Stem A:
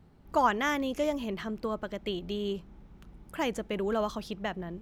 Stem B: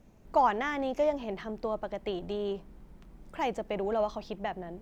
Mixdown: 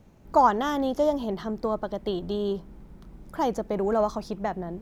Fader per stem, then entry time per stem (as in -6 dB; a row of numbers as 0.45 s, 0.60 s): -1.5 dB, +2.0 dB; 0.00 s, 0.00 s